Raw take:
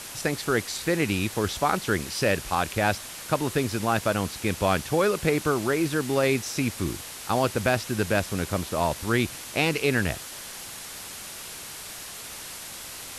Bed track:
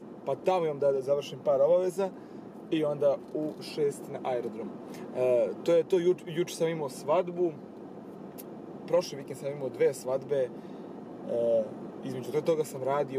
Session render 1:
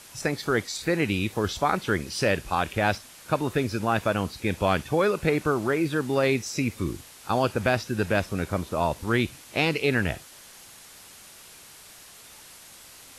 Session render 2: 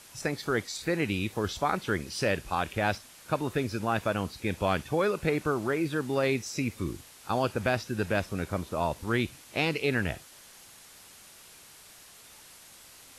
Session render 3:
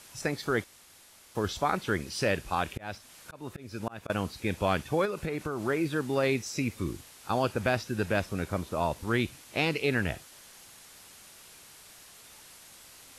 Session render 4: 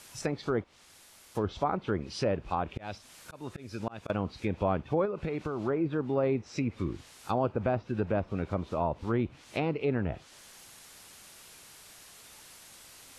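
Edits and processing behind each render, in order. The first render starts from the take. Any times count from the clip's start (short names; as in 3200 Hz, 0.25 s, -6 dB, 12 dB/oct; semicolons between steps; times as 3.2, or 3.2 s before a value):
noise print and reduce 9 dB
gain -4 dB
0.64–1.35 room tone; 2.53–4.1 auto swell 0.366 s; 5.05–5.62 compressor, threshold -28 dBFS
treble ducked by the level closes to 1300 Hz, closed at -25 dBFS; dynamic EQ 1700 Hz, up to -7 dB, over -51 dBFS, Q 2.3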